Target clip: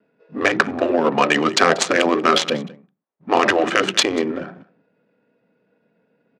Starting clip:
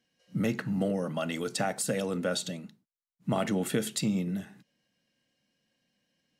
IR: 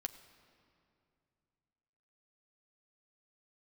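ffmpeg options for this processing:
-af "afftfilt=real='re*lt(hypot(re,im),0.141)':imag='im*lt(hypot(re,im),0.141)':win_size=1024:overlap=0.75,adynamicsmooth=sensitivity=7:basefreq=850,asetrate=39289,aresample=44100,atempo=1.12246,highpass=340,lowpass=6800,aecho=1:1:188:0.075,alimiter=level_in=24.5dB:limit=-1dB:release=50:level=0:latency=1,volume=-1dB"

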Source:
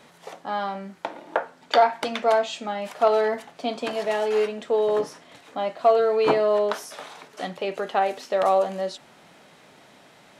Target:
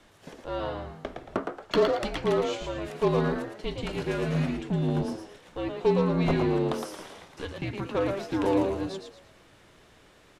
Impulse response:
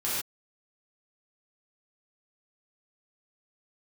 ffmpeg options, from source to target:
-filter_complex "[0:a]aeval=exprs='0.447*(cos(1*acos(clip(val(0)/0.447,-1,1)))-cos(1*PI/2))+0.02*(cos(8*acos(clip(val(0)/0.447,-1,1)))-cos(8*PI/2))':channel_layout=same,afreqshift=-270,asplit=5[link_01][link_02][link_03][link_04][link_05];[link_02]adelay=113,afreqshift=86,volume=-5.5dB[link_06];[link_03]adelay=226,afreqshift=172,volume=-14.9dB[link_07];[link_04]adelay=339,afreqshift=258,volume=-24.2dB[link_08];[link_05]adelay=452,afreqshift=344,volume=-33.6dB[link_09];[link_01][link_06][link_07][link_08][link_09]amix=inputs=5:normalize=0,volume=-5.5dB"

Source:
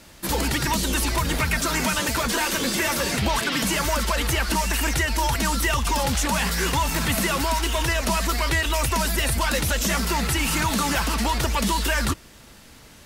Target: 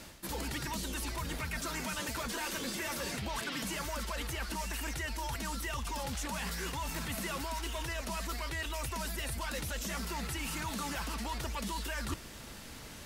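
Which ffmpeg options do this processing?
ffmpeg -i in.wav -af "areverse,acompressor=threshold=-35dB:ratio=8,areverse" out.wav

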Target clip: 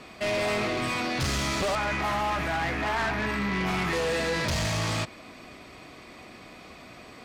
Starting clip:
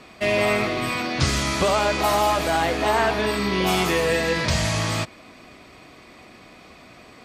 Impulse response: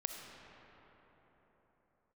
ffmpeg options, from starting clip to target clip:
-filter_complex "[0:a]acrossover=split=9300[link_01][link_02];[link_02]acompressor=threshold=-57dB:ratio=4:attack=1:release=60[link_03];[link_01][link_03]amix=inputs=2:normalize=0,asettb=1/sr,asplit=3[link_04][link_05][link_06];[link_04]atrim=end=1.754[link_07];[link_05]atrim=start=1.75:end=3.93,asetpts=PTS-STARTPTS,afade=type=in:duration=0.004:curve=qsin,afade=type=out:start_time=2.176:duration=0.004:curve=qsin,equalizer=frequency=125:width_type=o:width=1:gain=4,equalizer=frequency=500:width_type=o:width=1:gain=-10,equalizer=frequency=2000:width_type=o:width=1:gain=6,equalizer=frequency=4000:width_type=o:width=1:gain=-11,equalizer=frequency=8000:width_type=o:width=1:gain=-9[link_08];[link_06]atrim=start=3.926[link_09];[link_07][link_08]acrossfade=duration=0.004:curve1=hsin:curve2=qsin[link_10];[link_10][link_09]acrossfade=duration=0.004:curve1=qsin:curve2=hsin,asoftclip=type=tanh:threshold=-24dB"

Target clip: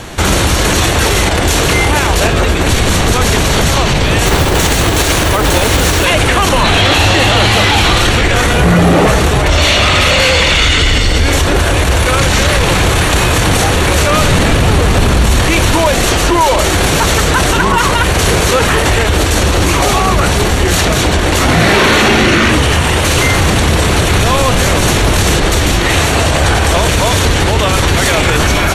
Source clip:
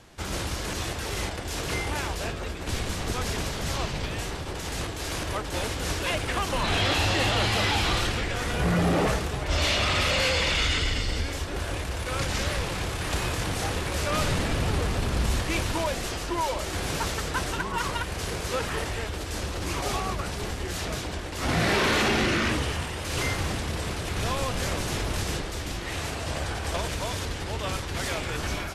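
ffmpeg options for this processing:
ffmpeg -i in.wav -filter_complex "[0:a]bandreject=frequency=5000:width=8.5,asettb=1/sr,asplit=3[link_01][link_02][link_03];[link_01]atrim=end=4.264[link_04];[link_02]atrim=start=4.26:end=6.05,asetpts=PTS-STARTPTS,afade=type=in:duration=0.004:curve=qsin,afade=type=out:start_time=1.786:duration=0.004:curve=qsin,acrusher=bits=3:mode=log:mix=0:aa=0.000001[link_05];[link_03]atrim=start=6.046[link_06];[link_04][link_05]acrossfade=duration=0.004:curve1=hsin:curve2=qsin[link_07];[link_07][link_06]acrossfade=duration=0.004:curve1=qsin:curve2=hsin,alimiter=level_in=26.5dB:limit=-1dB:release=50:level=0:latency=1,volume=-1dB" out.wav

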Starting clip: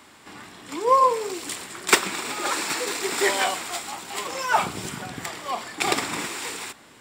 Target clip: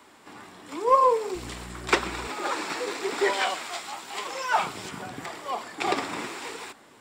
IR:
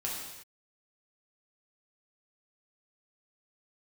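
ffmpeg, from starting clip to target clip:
-filter_complex "[0:a]asettb=1/sr,asplit=3[link_01][link_02][link_03];[link_01]atrim=end=1.354[link_04];[link_02]atrim=start=1.35:end=2.28,asetpts=PTS-STARTPTS,afade=type=in:duration=0.004:curve=qsin,afade=type=out:start_time=0.926:duration=0.004:curve=qsin,aeval=exprs='val(0)+0.02*(sin(2*PI*60*n/s)+sin(2*PI*2*60*n/s)/2+sin(2*PI*3*60*n/s)/3+sin(2*PI*4*60*n/s)/4+sin(2*PI*5*60*n/s)/5)':channel_layout=same[link_05];[link_03]atrim=start=2.276[link_06];[link_04][link_05]acrossfade=duration=0.004:curve1=hsin:curve2=qsin[link_07];[link_07][link_06]acrossfade=duration=0.004:curve1=qsin:curve2=hsin,asettb=1/sr,asplit=3[link_08][link_09][link_10];[link_08]atrim=end=3.334[link_11];[link_09]atrim=start=3.33:end=4.91,asetpts=PTS-STARTPTS,afade=type=in:duration=0.004:curve=qsin,afade=type=out:start_time=1.576:duration=0.004:curve=qsin,tiltshelf=frequency=1100:gain=-4.5[link_12];[link_10]atrim=start=4.906[link_13];[link_11][link_12]acrossfade=duration=0.004:curve1=hsin:curve2=qsin[link_14];[link_14][link_13]acrossfade=duration=0.004:curve1=qsin:curve2=hsin,acrossover=split=250|1300[link_15][link_16][link_17];[link_16]acontrast=36[link_18];[link_15][link_18][link_17]amix=inputs=3:normalize=0,flanger=delay=2:depth=9:regen=69:speed=0.91:shape=sinusoidal,acrossover=split=6100[link_19][link_20];[link_20]acompressor=threshold=-47dB:ratio=4:attack=1:release=60[link_21];[link_19][link_21]amix=inputs=2:normalize=0,volume=-1.5dB"

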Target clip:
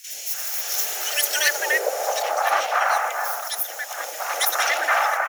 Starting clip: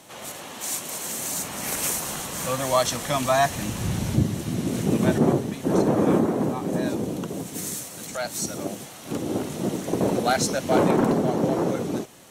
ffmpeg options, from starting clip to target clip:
ffmpeg -i in.wav -filter_complex "[0:a]superequalizer=6b=0.355:12b=2.82:14b=2,asetrate=102753,aresample=44100,afreqshift=280,acrossover=split=640|2300[link_01][link_02][link_03];[link_01]adelay=70[link_04];[link_02]adelay=290[link_05];[link_04][link_05][link_03]amix=inputs=3:normalize=0,volume=3.5dB" out.wav

